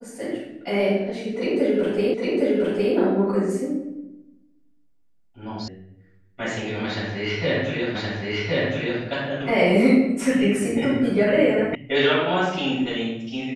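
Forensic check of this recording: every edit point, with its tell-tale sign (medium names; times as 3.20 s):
2.14 s: repeat of the last 0.81 s
5.68 s: sound stops dead
7.95 s: repeat of the last 1.07 s
11.75 s: sound stops dead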